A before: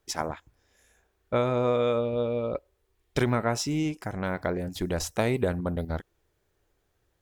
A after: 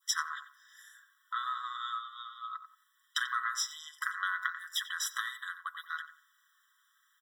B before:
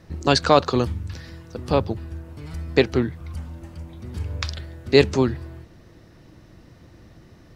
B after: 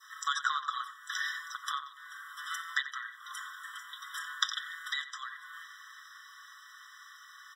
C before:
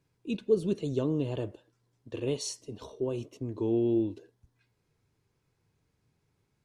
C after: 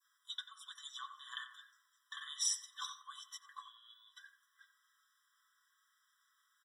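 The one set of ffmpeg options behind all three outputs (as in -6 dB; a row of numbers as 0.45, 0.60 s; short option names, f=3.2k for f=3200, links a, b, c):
-filter_complex "[0:a]acrossover=split=210[a][b];[b]acompressor=threshold=-37dB:ratio=5[c];[a][c]amix=inputs=2:normalize=0,bandreject=f=5.3k:w=29,aecho=1:1:6.2:0.54,asplit=2[d][e];[e]adelay=90,lowpass=f=1.4k:p=1,volume=-8dB,asplit=2[f][g];[g]adelay=90,lowpass=f=1.4k:p=1,volume=0.36,asplit=2[h][i];[i]adelay=90,lowpass=f=1.4k:p=1,volume=0.36,asplit=2[j][k];[k]adelay=90,lowpass=f=1.4k:p=1,volume=0.36[l];[d][f][h][j][l]amix=inputs=5:normalize=0,adynamicequalizer=threshold=0.002:dfrequency=2100:dqfactor=0.81:tfrequency=2100:tqfactor=0.81:attack=5:release=100:ratio=0.375:range=2.5:mode=boostabove:tftype=bell,afftfilt=real='re*eq(mod(floor(b*sr/1024/1000),2),1)':imag='im*eq(mod(floor(b*sr/1024/1000),2),1)':win_size=1024:overlap=0.75,volume=9dB"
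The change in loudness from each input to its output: -7.5, -15.0, -11.0 LU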